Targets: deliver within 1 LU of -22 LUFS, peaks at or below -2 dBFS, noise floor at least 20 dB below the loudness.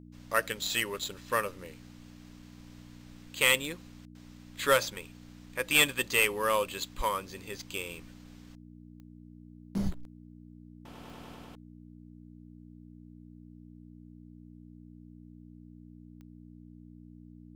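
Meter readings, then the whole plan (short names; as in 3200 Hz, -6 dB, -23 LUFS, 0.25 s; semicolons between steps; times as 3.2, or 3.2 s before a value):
clicks 4; hum 60 Hz; harmonics up to 300 Hz; hum level -48 dBFS; loudness -29.5 LUFS; peak -12.0 dBFS; loudness target -22.0 LUFS
-> de-click; de-hum 60 Hz, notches 5; gain +7.5 dB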